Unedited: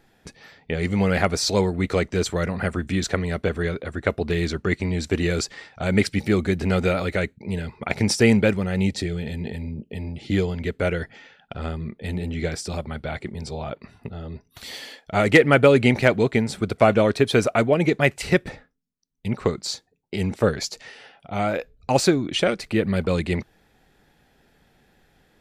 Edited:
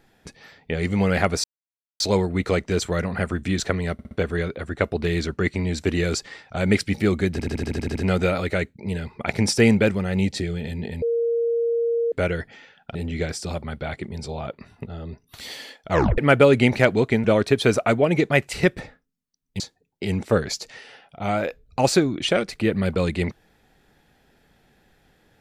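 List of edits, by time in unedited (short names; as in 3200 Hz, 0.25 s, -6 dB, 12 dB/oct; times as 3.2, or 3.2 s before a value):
1.44 insert silence 0.56 s
3.37 stutter 0.06 s, 4 plays
6.58 stutter 0.08 s, 9 plays
9.64–10.74 bleep 466 Hz -19 dBFS
11.57–12.18 cut
15.14 tape stop 0.27 s
16.47–16.93 cut
19.29–19.71 cut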